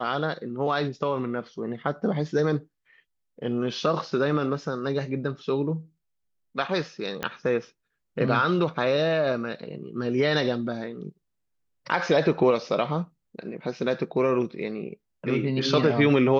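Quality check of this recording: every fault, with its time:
0:07.23: click −14 dBFS

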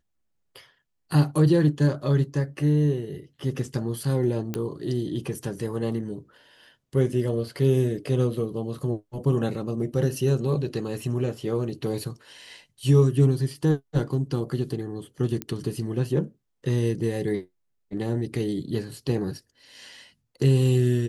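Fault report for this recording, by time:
0:04.54: click −15 dBFS
0:15.42: click −14 dBFS

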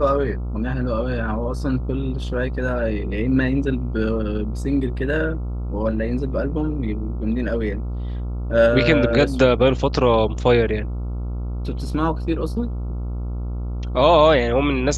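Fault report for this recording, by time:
mains buzz 60 Hz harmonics 23 −26 dBFS

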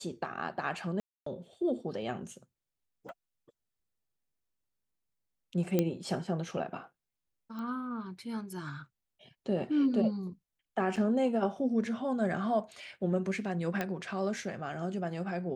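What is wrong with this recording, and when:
0:01.00–0:01.26: drop-out 264 ms
0:03.09: click −36 dBFS
0:05.79: click −14 dBFS
0:07.59: click −30 dBFS
0:10.96: drop-out 4.9 ms
0:13.81: click −18 dBFS

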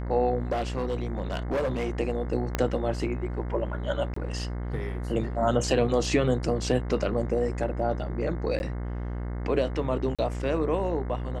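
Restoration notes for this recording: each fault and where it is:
mains buzz 60 Hz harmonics 36 −32 dBFS
0:00.51–0:01.99: clipping −23.5 dBFS
0:02.55: click −11 dBFS
0:04.14–0:04.16: drop-out 24 ms
0:08.59–0:08.60: drop-out 11 ms
0:10.15–0:10.19: drop-out 36 ms

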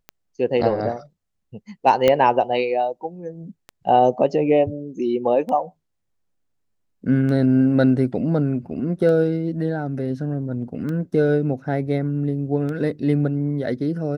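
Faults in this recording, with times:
scratch tick 33 1/3 rpm −19 dBFS
0:02.08: click −5 dBFS

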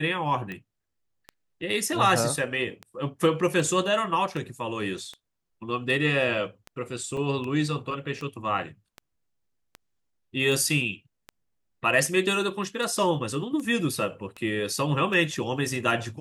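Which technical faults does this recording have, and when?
scratch tick 78 rpm −23 dBFS
0:07.17: drop-out 2.3 ms

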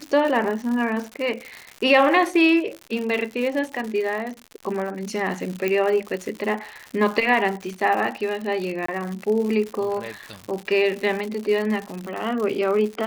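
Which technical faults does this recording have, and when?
surface crackle 140 per second −28 dBFS
0:05.68: click −11 dBFS
0:08.86–0:08.88: drop-out 24 ms

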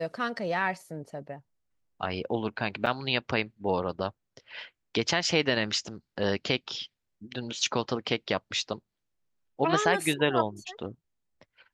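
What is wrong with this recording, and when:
0:02.86–0:02.87: drop-out 5.5 ms

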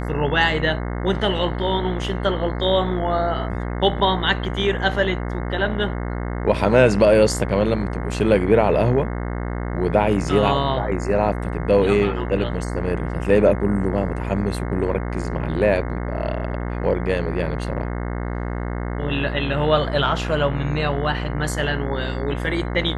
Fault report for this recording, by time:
mains buzz 60 Hz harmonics 36 −26 dBFS

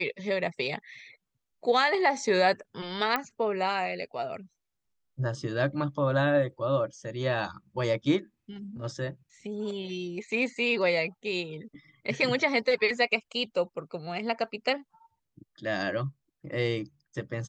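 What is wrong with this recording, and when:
0:03.16: click −14 dBFS

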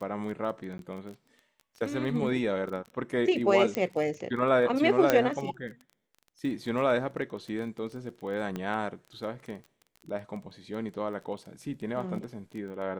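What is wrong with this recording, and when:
surface crackle 17 per second −37 dBFS
0:00.78–0:00.79: drop-out 12 ms
0:03.75: click −15 dBFS
0:05.10: click −8 dBFS
0:08.56: click −21 dBFS

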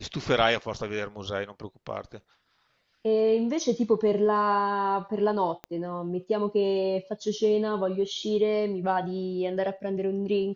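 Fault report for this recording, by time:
0:05.64: click −23 dBFS

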